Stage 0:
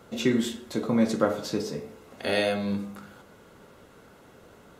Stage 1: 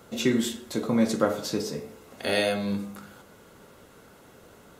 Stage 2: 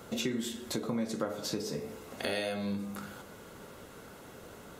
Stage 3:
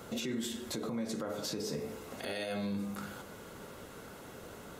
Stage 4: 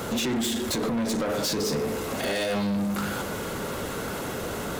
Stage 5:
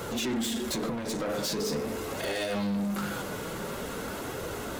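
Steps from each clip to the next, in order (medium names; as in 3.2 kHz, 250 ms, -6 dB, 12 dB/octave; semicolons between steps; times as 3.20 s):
treble shelf 5.8 kHz +7 dB
compression 4:1, threshold -35 dBFS, peak gain reduction 15 dB; trim +2.5 dB
peak limiter -29 dBFS, peak gain reduction 11 dB; trim +1 dB
reverse; upward compressor, threshold -43 dBFS; reverse; waveshaping leveller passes 3; trim +5.5 dB
flange 0.45 Hz, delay 1.9 ms, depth 5 ms, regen -50%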